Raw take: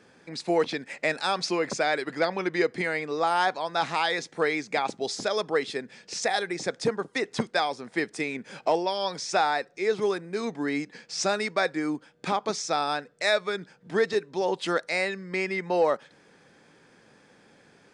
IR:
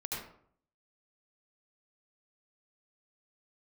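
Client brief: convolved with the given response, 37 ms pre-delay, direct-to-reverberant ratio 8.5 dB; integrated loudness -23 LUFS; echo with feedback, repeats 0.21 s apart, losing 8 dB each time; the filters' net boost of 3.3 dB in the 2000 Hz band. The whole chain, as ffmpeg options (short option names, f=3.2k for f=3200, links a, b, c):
-filter_complex "[0:a]equalizer=f=2k:t=o:g=4,aecho=1:1:210|420|630|840|1050:0.398|0.159|0.0637|0.0255|0.0102,asplit=2[a][b];[1:a]atrim=start_sample=2205,adelay=37[c];[b][c]afir=irnorm=-1:irlink=0,volume=-11dB[d];[a][d]amix=inputs=2:normalize=0,volume=2.5dB"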